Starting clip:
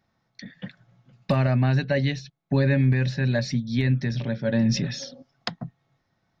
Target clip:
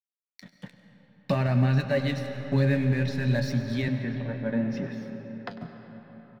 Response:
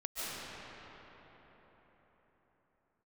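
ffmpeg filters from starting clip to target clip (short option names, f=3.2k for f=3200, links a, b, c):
-filter_complex "[0:a]aeval=exprs='sgn(val(0))*max(abs(val(0))-0.0075,0)':c=same,flanger=delay=6.7:depth=8.7:regen=62:speed=0.58:shape=triangular,asettb=1/sr,asplit=3[a][b][c];[a]atrim=end=3.884[d];[b]atrim=start=3.88:end=5.51,asetpts=PTS-STARTPTS,afade=t=in:d=0.004:c=qsin,afade=t=out:st=1.626:d=0.004:c=qsin,acrossover=split=160 2300:gain=0.224 1 0.0891[e][f][g];[e][f][g]amix=inputs=3:normalize=0[h];[c]atrim=start=5.506[i];[d][h]acrossfade=d=0.004:c1=hsin:c2=qsin[j];[j][i]acrossfade=d=0.004:c1=qsin:c2=hsin,aecho=1:1:99:0.15,asplit=2[k][l];[1:a]atrim=start_sample=2205[m];[l][m]afir=irnorm=-1:irlink=0,volume=-10.5dB[n];[k][n]amix=inputs=2:normalize=0"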